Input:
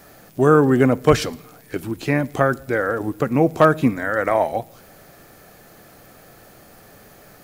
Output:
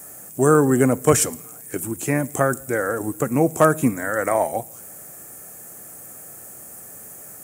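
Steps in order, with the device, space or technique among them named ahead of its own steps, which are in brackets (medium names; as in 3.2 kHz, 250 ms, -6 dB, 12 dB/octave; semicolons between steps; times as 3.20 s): budget condenser microphone (high-pass 77 Hz; resonant high shelf 5.9 kHz +12.5 dB, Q 3); trim -1.5 dB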